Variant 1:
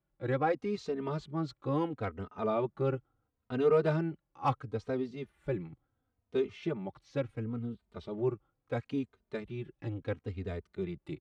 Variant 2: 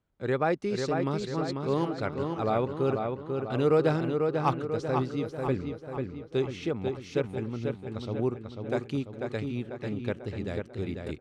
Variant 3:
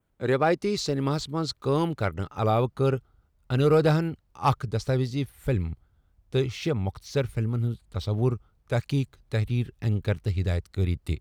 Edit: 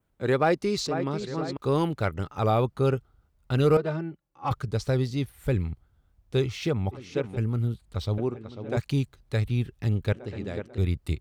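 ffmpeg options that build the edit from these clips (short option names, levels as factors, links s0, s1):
-filter_complex "[1:a]asplit=4[s0][s1][s2][s3];[2:a]asplit=6[s4][s5][s6][s7][s8][s9];[s4]atrim=end=0.872[s10];[s0]atrim=start=0.868:end=1.572[s11];[s5]atrim=start=1.568:end=3.772[s12];[0:a]atrim=start=3.768:end=4.512[s13];[s6]atrim=start=4.508:end=6.95[s14];[s1]atrim=start=6.91:end=7.39[s15];[s7]atrim=start=7.35:end=8.182[s16];[s2]atrim=start=8.178:end=8.772[s17];[s8]atrim=start=8.768:end=10.132[s18];[s3]atrim=start=10.128:end=10.782[s19];[s9]atrim=start=10.778[s20];[s10][s11]acrossfade=d=0.004:c1=hsin:c2=hsin[s21];[s21][s12]acrossfade=d=0.004:c1=hsin:c2=hsin[s22];[s22][s13]acrossfade=d=0.004:c1=hsin:c2=hsin[s23];[s23][s14]acrossfade=d=0.004:c1=hsin:c2=hsin[s24];[s24][s15]acrossfade=d=0.04:c1=tri:c2=tri[s25];[s25][s16]acrossfade=d=0.04:c1=tri:c2=tri[s26];[s26][s17]acrossfade=d=0.004:c1=hsin:c2=hsin[s27];[s27][s18]acrossfade=d=0.004:c1=hsin:c2=hsin[s28];[s28][s19]acrossfade=d=0.004:c1=hsin:c2=hsin[s29];[s29][s20]acrossfade=d=0.004:c1=hsin:c2=hsin"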